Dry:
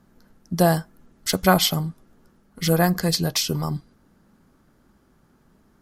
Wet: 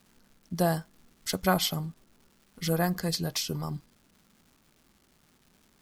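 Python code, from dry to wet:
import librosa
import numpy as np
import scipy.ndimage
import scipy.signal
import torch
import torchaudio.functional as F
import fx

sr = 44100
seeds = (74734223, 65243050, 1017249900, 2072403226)

y = fx.dmg_crackle(x, sr, seeds[0], per_s=470.0, level_db=-43.0)
y = y * 10.0 ** (-8.0 / 20.0)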